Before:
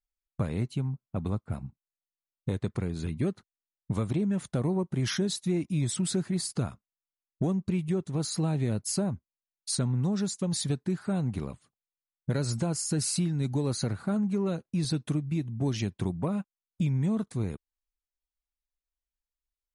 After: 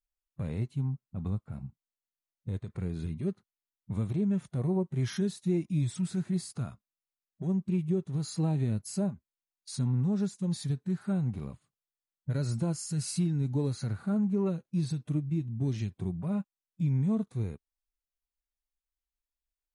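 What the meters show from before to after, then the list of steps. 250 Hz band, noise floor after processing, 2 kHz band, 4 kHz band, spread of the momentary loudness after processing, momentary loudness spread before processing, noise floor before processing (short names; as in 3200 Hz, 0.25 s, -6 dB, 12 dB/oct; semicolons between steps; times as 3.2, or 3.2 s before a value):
-1.0 dB, under -85 dBFS, -7.0 dB, -9.0 dB, 10 LU, 7 LU, under -85 dBFS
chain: harmonic-percussive split percussive -15 dB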